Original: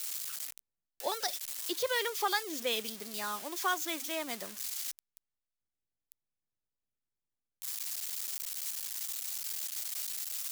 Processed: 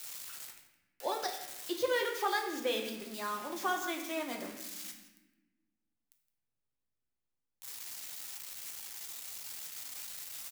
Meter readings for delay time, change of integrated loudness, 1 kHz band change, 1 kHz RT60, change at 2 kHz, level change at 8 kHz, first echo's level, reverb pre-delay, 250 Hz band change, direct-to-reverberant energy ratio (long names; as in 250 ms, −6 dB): 165 ms, −2.5 dB, +0.5 dB, 0.90 s, −1.0 dB, −6.0 dB, −16.5 dB, 6 ms, +2.5 dB, 2.0 dB